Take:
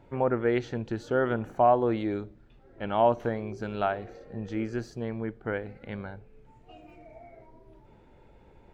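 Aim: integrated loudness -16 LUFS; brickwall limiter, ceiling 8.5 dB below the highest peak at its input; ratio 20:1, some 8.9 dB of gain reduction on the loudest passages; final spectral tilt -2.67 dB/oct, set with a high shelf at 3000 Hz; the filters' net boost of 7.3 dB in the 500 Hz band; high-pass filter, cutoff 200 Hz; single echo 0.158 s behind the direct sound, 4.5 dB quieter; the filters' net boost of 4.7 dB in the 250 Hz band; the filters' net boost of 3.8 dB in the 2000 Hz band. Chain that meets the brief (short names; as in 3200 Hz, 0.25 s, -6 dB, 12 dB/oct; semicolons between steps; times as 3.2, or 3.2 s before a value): HPF 200 Hz; bell 250 Hz +4.5 dB; bell 500 Hz +8 dB; bell 2000 Hz +6.5 dB; high shelf 3000 Hz -6 dB; compressor 20:1, threshold -19 dBFS; limiter -18.5 dBFS; echo 0.158 s -4.5 dB; gain +13 dB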